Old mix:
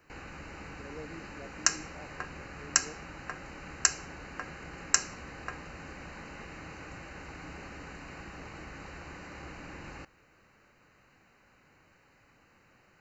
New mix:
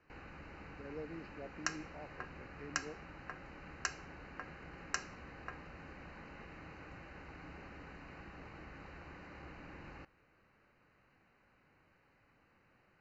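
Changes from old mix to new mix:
background -6.0 dB; master: add distance through air 170 m

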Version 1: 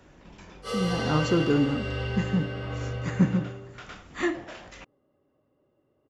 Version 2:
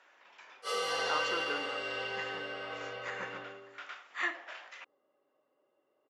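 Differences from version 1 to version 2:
speech: add band-pass filter 1.8 kHz, Q 0.78; master: add high-pass 560 Hz 12 dB/octave

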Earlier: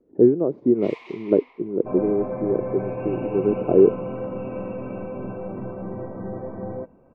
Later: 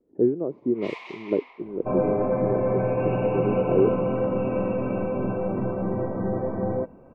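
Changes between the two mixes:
speech -6.0 dB; first sound +4.0 dB; second sound +5.5 dB

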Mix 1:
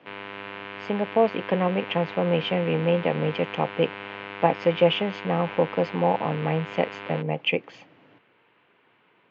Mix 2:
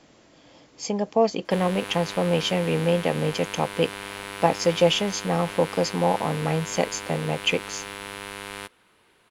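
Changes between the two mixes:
background: entry +1.45 s; master: remove elliptic band-pass 110–2800 Hz, stop band 70 dB

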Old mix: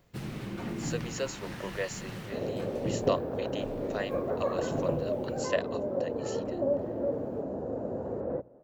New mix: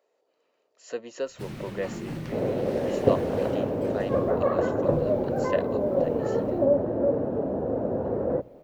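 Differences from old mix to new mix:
speech: add tilt EQ -3 dB/octave; first sound: entry +1.25 s; second sound +7.0 dB

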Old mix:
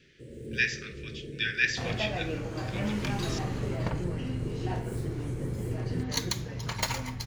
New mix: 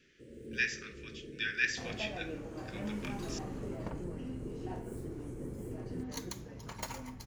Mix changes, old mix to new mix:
first sound -6.5 dB; second sound -8.0 dB; master: add graphic EQ 125/250/2000/4000 Hz -7/+4/-4/-7 dB

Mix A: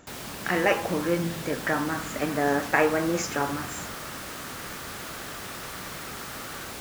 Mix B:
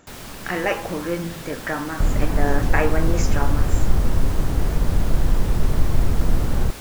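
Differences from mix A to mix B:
first sound: remove high-pass 140 Hz 6 dB/octave; second sound: remove brick-wall FIR high-pass 1.1 kHz

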